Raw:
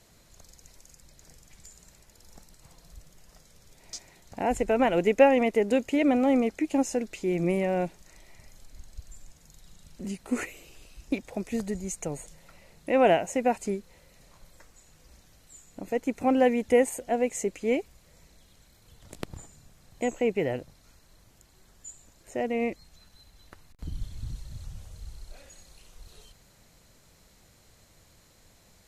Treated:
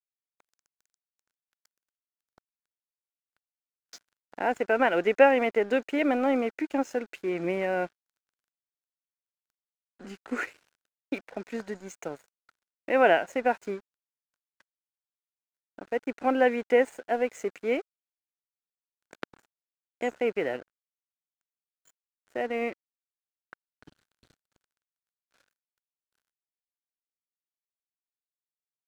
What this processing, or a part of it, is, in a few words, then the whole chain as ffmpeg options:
pocket radio on a weak battery: -af "highpass=290,lowpass=4.5k,aeval=exprs='sgn(val(0))*max(abs(val(0))-0.00335,0)':c=same,equalizer=f=1.5k:t=o:w=0.46:g=10.5"

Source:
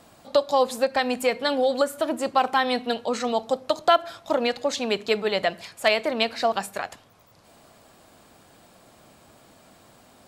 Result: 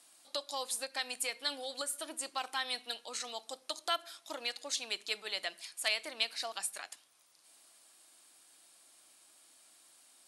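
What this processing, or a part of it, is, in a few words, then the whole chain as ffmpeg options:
piezo pickup straight into a mixer: -af "lowpass=7.8k,aderivative,superequalizer=6b=2.24:16b=2.51"

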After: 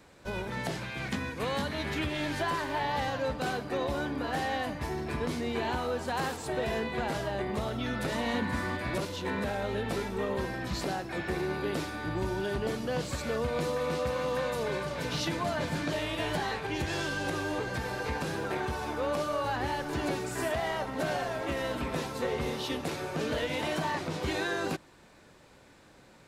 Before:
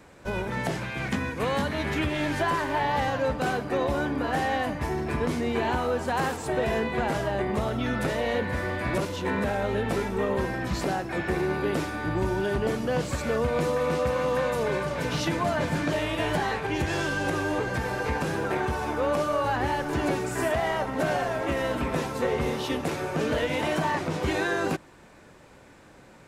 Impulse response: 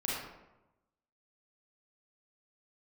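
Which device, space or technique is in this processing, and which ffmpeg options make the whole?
presence and air boost: -filter_complex "[0:a]equalizer=f=4.1k:t=o:w=0.84:g=5.5,highshelf=f=9k:g=4,asettb=1/sr,asplit=3[a][b][c];[a]atrim=end=8.124[d];[b]atrim=start=8.12:end=8.77,asetpts=PTS-STARTPTS,afade=t=in:d=0.004:c=qsin,afade=t=out:st=0.646:d=0.004:c=qsin,equalizer=f=250:t=o:w=1:g=9,equalizer=f=500:t=o:w=1:g=-7,equalizer=f=1k:t=o:w=1:g=7,equalizer=f=8k:t=o:w=1:g=5[e];[c]atrim=start=8.766[f];[d][e]acrossfade=d=0.004:c1=hsin:c2=qsin[g];[g][f]acrossfade=d=0.004:c1=qsin:c2=hsin,volume=-5.5dB"

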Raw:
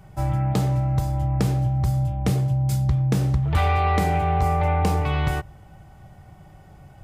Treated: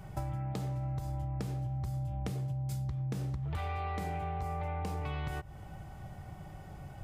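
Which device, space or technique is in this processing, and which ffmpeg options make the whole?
serial compression, leveller first: -af "acompressor=threshold=-23dB:ratio=2.5,acompressor=threshold=-34dB:ratio=6"

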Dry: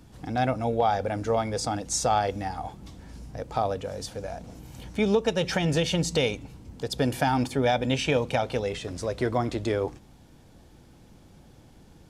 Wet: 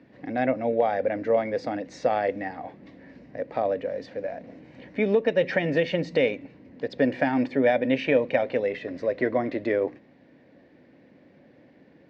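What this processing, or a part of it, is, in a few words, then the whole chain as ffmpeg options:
kitchen radio: -af "highpass=210,equalizer=f=270:t=q:w=4:g=6,equalizer=f=560:t=q:w=4:g=8,equalizer=f=850:t=q:w=4:g=-7,equalizer=f=1.3k:t=q:w=4:g=-8,equalizer=f=1.9k:t=q:w=4:g=10,equalizer=f=3.3k:t=q:w=4:g=-9,lowpass=f=3.5k:w=0.5412,lowpass=f=3.5k:w=1.3066"

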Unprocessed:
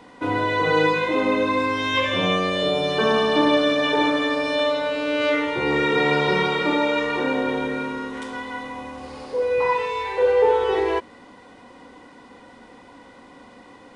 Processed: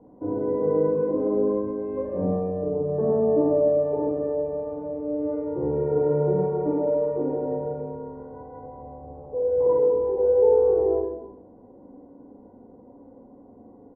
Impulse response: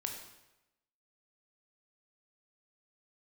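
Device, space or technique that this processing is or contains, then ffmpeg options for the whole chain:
next room: -filter_complex "[0:a]asettb=1/sr,asplit=3[a][b][c];[a]atrim=end=9.664[d];[b]atrim=start=9.66:end=10.16,asetpts=PTS-STARTPTS,afade=t=in:d=0.004:c=qsin,afade=t=out:st=0.496:d=0.004:c=qsin,equalizer=f=330:w=1:g=13[e];[c]atrim=start=10.156[f];[d][e]acrossfade=d=0.004:c1=hsin:c2=qsin[g];[g][f]acrossfade=d=0.004:c1=qsin:c2=hsin,lowpass=f=650:w=0.5412,lowpass=f=650:w=1.3066,aecho=1:1:39|53:0.398|0.376[h];[1:a]atrim=start_sample=2205[i];[h][i]afir=irnorm=-1:irlink=0,volume=-1.5dB"

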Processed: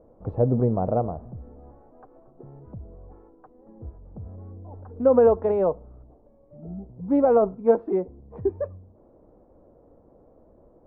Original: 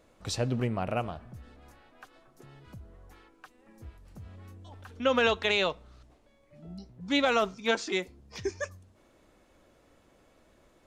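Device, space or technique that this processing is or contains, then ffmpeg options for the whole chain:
under water: -af "lowpass=f=850:w=0.5412,lowpass=f=850:w=1.3066,equalizer=f=470:t=o:w=0.23:g=5,volume=7.5dB"

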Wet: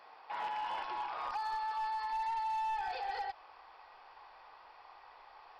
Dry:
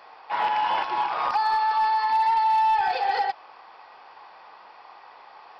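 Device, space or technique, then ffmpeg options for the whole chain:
clipper into limiter: -af "asubboost=boost=11:cutoff=60,asoftclip=type=hard:threshold=-18.5dB,alimiter=limit=-24dB:level=0:latency=1:release=55,volume=-8.5dB"

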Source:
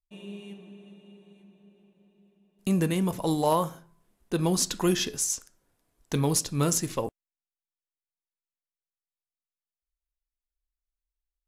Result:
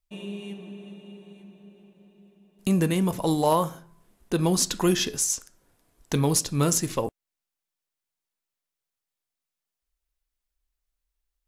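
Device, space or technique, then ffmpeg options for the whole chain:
parallel compression: -filter_complex "[0:a]asplit=2[a][b];[b]acompressor=threshold=-42dB:ratio=6,volume=-1dB[c];[a][c]amix=inputs=2:normalize=0,volume=1.5dB"

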